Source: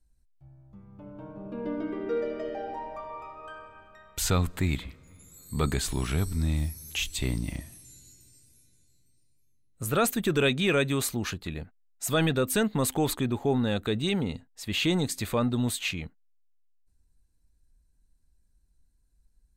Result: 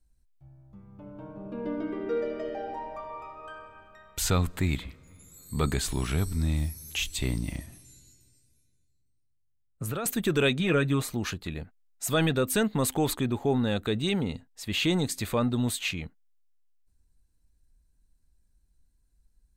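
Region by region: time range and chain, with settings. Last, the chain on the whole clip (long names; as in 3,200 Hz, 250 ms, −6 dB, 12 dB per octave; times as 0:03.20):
0:07.66–0:10.06: high-shelf EQ 5,500 Hz −5.5 dB + downward compressor 8 to 1, threshold −35 dBFS + multiband upward and downward expander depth 70%
0:10.59–0:11.14: high-shelf EQ 2,300 Hz −8.5 dB + comb filter 6.5 ms, depth 58%
whole clip: no processing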